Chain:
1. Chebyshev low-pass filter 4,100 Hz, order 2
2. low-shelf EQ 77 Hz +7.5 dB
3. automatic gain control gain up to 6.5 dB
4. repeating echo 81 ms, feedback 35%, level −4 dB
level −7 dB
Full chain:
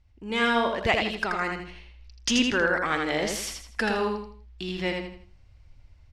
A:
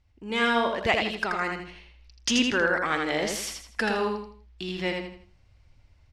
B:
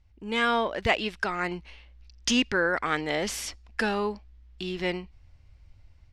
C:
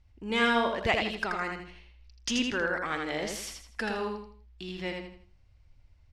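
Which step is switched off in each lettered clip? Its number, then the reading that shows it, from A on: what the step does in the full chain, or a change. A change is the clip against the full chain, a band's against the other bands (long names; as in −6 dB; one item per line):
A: 2, 125 Hz band −1.5 dB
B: 4, change in momentary loudness spread −2 LU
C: 3, 8 kHz band −1.5 dB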